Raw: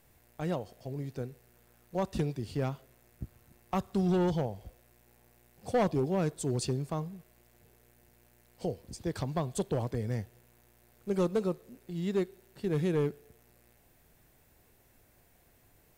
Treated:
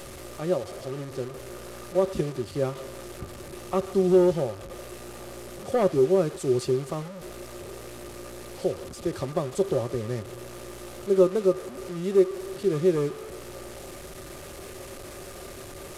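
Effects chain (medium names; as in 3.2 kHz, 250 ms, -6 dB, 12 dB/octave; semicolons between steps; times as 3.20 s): one-bit delta coder 64 kbps, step -36.5 dBFS; small resonant body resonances 380/550/1200 Hz, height 14 dB, ringing for 70 ms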